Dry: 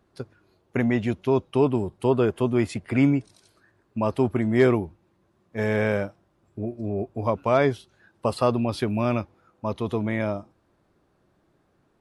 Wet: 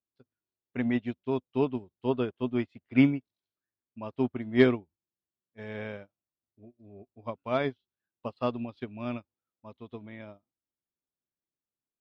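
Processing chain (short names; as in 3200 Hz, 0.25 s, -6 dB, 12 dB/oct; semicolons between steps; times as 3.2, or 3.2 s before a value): synth low-pass 3600 Hz, resonance Q 2.2; bell 250 Hz +6.5 dB 0.21 oct; upward expander 2.5:1, over -36 dBFS; gain -2 dB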